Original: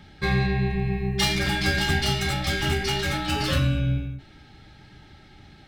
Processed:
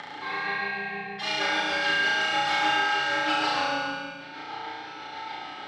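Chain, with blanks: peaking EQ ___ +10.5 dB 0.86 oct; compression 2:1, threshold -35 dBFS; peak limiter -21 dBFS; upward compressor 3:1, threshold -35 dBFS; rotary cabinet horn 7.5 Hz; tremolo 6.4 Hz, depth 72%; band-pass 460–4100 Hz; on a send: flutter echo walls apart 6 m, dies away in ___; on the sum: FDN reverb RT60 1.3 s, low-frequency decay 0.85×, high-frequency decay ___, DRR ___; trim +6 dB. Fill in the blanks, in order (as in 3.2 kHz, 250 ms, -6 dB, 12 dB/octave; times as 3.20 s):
1 kHz, 1.4 s, 1×, -2 dB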